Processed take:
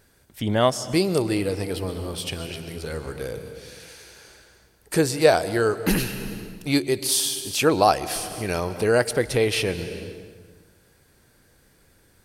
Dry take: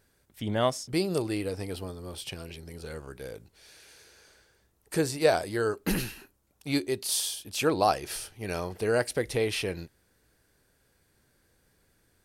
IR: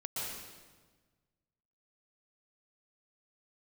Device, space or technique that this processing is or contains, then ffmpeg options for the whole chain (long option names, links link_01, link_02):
ducked reverb: -filter_complex "[0:a]asplit=3[link_01][link_02][link_03];[1:a]atrim=start_sample=2205[link_04];[link_02][link_04]afir=irnorm=-1:irlink=0[link_05];[link_03]apad=whole_len=540086[link_06];[link_05][link_06]sidechaincompress=threshold=-35dB:ratio=8:attack=6.1:release=401,volume=-6dB[link_07];[link_01][link_07]amix=inputs=2:normalize=0,volume=6dB"